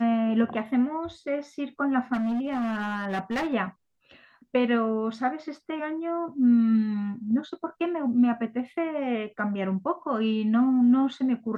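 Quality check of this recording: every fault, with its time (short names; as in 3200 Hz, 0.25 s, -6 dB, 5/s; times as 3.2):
2.13–3.54 clipped -24.5 dBFS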